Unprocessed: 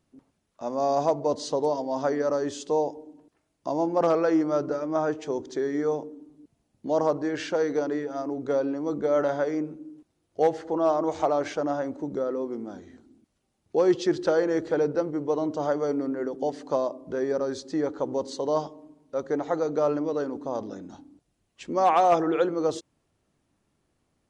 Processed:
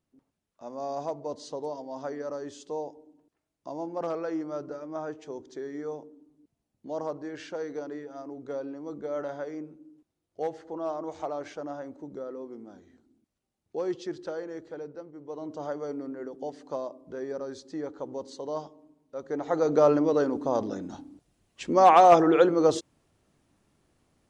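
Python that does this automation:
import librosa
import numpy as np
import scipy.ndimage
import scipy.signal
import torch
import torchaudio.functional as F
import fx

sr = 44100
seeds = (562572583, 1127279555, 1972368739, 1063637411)

y = fx.gain(x, sr, db=fx.line((13.84, -9.5), (15.13, -17.0), (15.55, -8.0), (19.2, -8.0), (19.72, 4.0)))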